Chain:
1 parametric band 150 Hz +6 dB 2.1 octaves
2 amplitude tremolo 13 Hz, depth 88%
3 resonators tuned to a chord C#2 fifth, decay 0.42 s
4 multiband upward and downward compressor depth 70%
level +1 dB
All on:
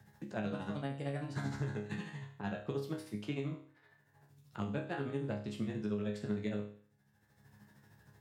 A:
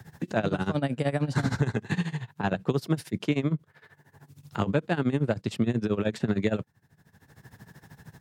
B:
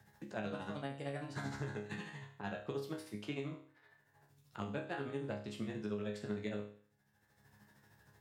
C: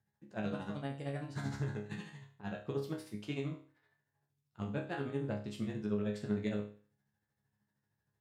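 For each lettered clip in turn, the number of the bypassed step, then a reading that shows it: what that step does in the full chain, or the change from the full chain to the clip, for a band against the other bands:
3, change in crest factor +3.0 dB
1, 125 Hz band −5.0 dB
4, change in crest factor +1.5 dB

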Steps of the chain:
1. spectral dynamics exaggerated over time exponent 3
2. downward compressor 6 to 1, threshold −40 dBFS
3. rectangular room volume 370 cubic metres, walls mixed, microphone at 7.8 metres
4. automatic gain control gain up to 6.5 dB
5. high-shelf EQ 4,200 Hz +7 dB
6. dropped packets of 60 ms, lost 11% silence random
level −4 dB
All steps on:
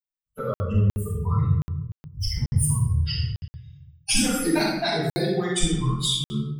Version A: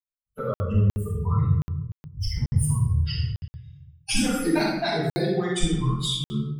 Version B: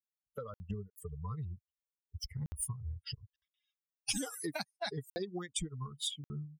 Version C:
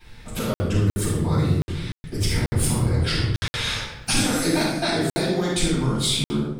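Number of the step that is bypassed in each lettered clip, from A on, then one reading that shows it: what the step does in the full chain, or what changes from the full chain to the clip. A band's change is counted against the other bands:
5, 8 kHz band −5.5 dB
3, change in momentary loudness spread −1 LU
1, 2 kHz band +2.0 dB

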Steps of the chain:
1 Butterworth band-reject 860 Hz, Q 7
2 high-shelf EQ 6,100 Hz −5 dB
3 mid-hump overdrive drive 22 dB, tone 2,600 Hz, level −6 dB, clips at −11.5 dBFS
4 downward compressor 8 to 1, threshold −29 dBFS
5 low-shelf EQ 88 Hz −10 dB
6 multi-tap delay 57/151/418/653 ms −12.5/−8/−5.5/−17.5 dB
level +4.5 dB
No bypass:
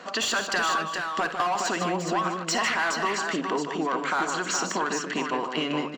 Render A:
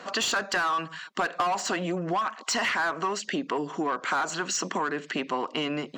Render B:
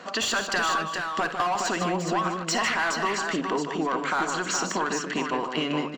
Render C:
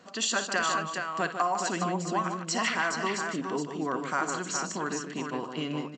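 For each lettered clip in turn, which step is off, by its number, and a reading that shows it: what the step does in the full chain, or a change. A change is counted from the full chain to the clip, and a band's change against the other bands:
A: 6, echo-to-direct ratio −3.0 dB to none audible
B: 5, 125 Hz band +2.0 dB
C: 3, change in crest factor +3.5 dB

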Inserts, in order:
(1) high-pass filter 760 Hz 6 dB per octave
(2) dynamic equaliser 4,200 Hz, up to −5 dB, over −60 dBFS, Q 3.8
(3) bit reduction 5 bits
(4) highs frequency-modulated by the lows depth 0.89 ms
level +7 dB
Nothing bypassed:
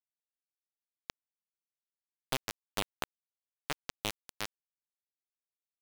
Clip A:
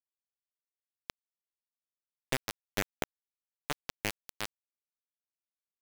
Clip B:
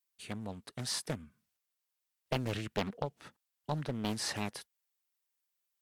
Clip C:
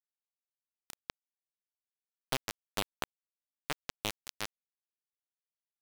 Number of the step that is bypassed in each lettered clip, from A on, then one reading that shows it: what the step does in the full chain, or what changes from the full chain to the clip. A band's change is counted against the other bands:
4, 4 kHz band −4.5 dB
3, change in crest factor −5.0 dB
2, change in momentary loudness spread −2 LU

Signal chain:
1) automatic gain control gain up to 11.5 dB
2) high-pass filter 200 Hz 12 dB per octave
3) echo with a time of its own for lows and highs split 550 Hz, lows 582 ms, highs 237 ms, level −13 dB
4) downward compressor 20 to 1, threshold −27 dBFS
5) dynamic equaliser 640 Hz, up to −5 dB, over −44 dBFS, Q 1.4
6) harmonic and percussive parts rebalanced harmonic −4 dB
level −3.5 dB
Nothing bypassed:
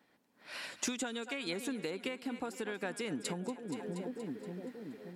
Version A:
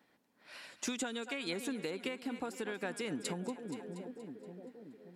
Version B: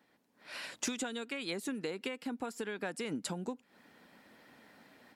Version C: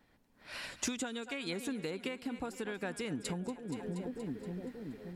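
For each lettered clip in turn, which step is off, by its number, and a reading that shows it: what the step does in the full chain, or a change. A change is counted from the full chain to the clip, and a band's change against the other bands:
1, change in momentary loudness spread +6 LU
3, change in momentary loudness spread +7 LU
2, 125 Hz band +4.0 dB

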